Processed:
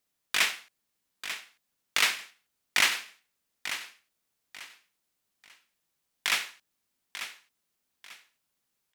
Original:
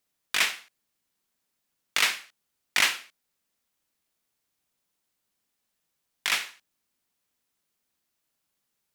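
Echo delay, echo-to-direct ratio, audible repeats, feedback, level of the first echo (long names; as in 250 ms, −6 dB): 892 ms, −10.5 dB, 3, 28%, −11.0 dB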